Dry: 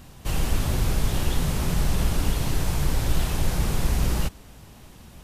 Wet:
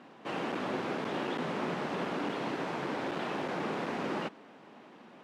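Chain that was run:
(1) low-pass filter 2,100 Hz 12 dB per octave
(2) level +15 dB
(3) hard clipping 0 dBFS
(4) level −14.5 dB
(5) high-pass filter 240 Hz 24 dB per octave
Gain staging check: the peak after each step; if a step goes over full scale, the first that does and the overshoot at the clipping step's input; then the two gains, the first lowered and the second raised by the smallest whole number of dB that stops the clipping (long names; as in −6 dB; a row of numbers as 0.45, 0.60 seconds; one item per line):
−10.5, +4.5, 0.0, −14.5, −22.0 dBFS
step 2, 4.5 dB
step 2 +10 dB, step 4 −9.5 dB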